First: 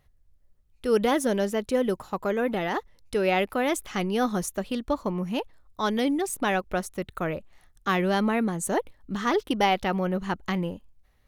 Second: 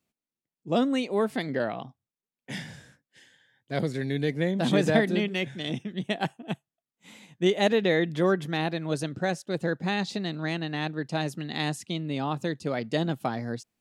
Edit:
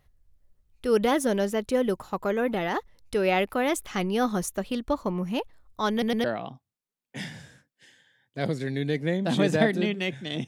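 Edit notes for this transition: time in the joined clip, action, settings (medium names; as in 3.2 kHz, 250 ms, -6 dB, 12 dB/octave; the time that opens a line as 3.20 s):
first
5.91 s: stutter in place 0.11 s, 3 plays
6.24 s: go over to second from 1.58 s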